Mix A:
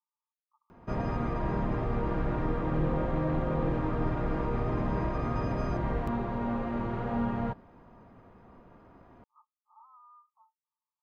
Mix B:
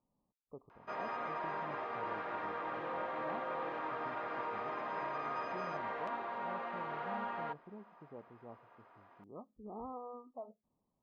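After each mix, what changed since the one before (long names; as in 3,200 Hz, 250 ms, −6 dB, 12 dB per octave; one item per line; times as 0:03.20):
speech: remove Chebyshev high-pass with heavy ripple 860 Hz, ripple 9 dB
background: add band-pass filter 800–4,200 Hz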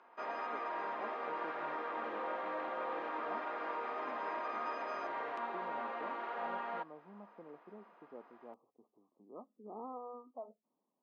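background: entry −0.70 s
master: add high-pass filter 230 Hz 24 dB per octave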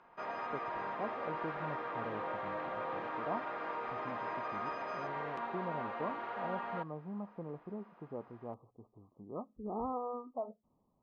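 speech +7.5 dB
master: remove high-pass filter 230 Hz 24 dB per octave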